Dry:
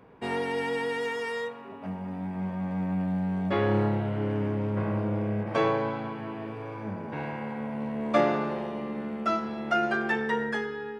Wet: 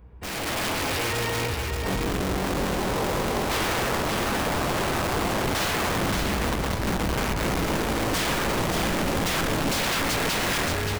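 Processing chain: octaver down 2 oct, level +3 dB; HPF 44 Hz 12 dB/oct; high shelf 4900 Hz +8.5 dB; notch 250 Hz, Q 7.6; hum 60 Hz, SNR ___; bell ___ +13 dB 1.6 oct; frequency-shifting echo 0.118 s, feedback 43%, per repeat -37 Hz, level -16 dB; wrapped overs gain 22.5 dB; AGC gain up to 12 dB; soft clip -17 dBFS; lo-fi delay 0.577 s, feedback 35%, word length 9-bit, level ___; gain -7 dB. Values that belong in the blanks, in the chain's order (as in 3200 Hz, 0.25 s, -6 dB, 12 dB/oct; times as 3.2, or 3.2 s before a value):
26 dB, 66 Hz, -4.5 dB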